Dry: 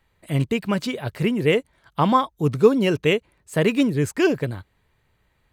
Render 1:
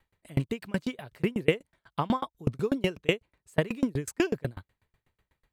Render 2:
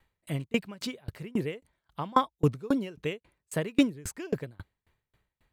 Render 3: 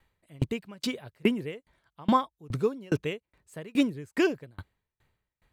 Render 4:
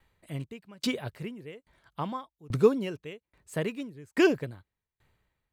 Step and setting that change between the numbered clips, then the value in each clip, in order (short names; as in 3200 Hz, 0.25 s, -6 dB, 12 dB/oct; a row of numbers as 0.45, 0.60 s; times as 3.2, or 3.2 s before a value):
dB-ramp tremolo, rate: 8.1, 3.7, 2.4, 1.2 Hz